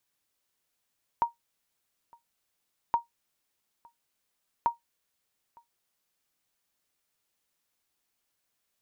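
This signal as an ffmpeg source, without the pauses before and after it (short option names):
-f lavfi -i "aevalsrc='0.158*(sin(2*PI*938*mod(t,1.72))*exp(-6.91*mod(t,1.72)/0.14)+0.0355*sin(2*PI*938*max(mod(t,1.72)-0.91,0))*exp(-6.91*max(mod(t,1.72)-0.91,0)/0.14))':d=5.16:s=44100"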